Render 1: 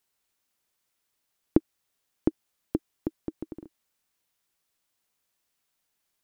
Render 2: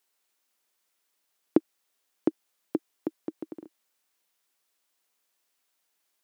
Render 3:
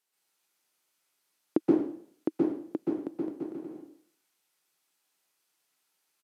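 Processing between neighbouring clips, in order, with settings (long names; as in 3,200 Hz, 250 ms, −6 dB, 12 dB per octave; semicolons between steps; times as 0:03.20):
high-pass filter 280 Hz 12 dB per octave; level +2 dB
dense smooth reverb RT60 0.59 s, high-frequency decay 0.95×, pre-delay 115 ms, DRR −5 dB; downsampling to 32,000 Hz; level −5 dB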